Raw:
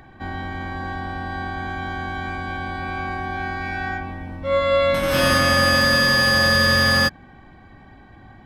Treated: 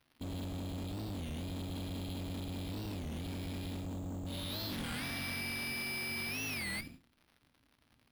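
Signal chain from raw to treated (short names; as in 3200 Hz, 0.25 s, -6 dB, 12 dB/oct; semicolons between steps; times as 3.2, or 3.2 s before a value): Chebyshev band-stop 290–3800 Hz, order 3; low shelf 170 Hz -6.5 dB; expander -34 dBFS; in parallel at +2.5 dB: compressor, threshold -32 dBFS, peak gain reduction 12 dB; on the sum: crackle 420/s -54 dBFS; tube stage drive 39 dB, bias 0.6; non-linear reverb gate 0.21 s falling, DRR 11 dB; speed mistake 24 fps film run at 25 fps; careless resampling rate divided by 6×, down none, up hold; record warp 33 1/3 rpm, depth 250 cents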